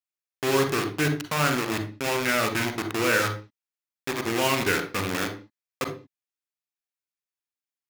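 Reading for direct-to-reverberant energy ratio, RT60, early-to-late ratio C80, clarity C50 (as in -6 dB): 6.5 dB, not exponential, 15.0 dB, 9.5 dB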